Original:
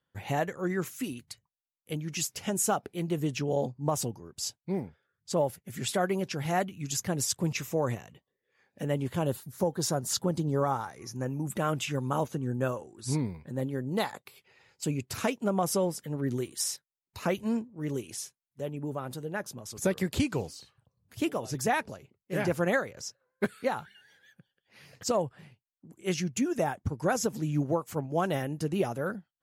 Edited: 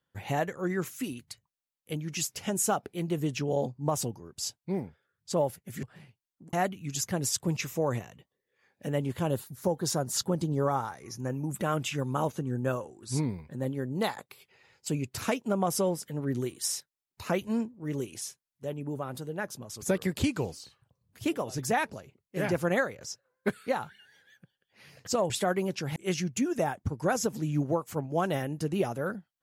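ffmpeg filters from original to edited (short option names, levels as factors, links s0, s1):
-filter_complex "[0:a]asplit=5[s0][s1][s2][s3][s4];[s0]atrim=end=5.832[s5];[s1]atrim=start=25.258:end=25.962[s6];[s2]atrim=start=6.488:end=25.262[s7];[s3]atrim=start=5.828:end=6.492[s8];[s4]atrim=start=25.958[s9];[s5][s6]acrossfade=d=0.004:c1=hsin:c2=hsin[s10];[s10][s7]acrossfade=d=0.004:c1=hsin:c2=hsin[s11];[s11][s8]acrossfade=d=0.004:c1=hsin:c2=hsin[s12];[s12][s9]acrossfade=d=0.004:c1=hsin:c2=hsin"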